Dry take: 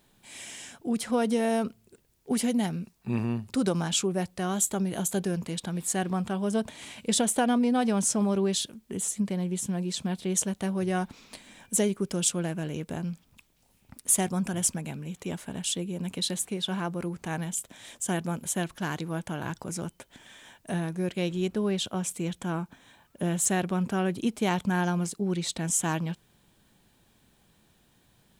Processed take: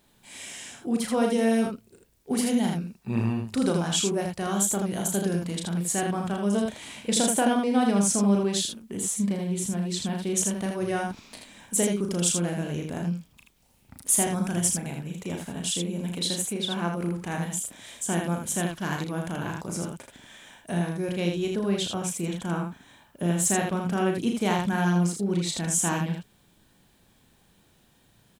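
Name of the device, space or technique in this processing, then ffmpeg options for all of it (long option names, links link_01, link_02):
slapback doubling: -filter_complex "[0:a]asplit=3[link_01][link_02][link_03];[link_02]adelay=35,volume=-5dB[link_04];[link_03]adelay=80,volume=-4dB[link_05];[link_01][link_04][link_05]amix=inputs=3:normalize=0"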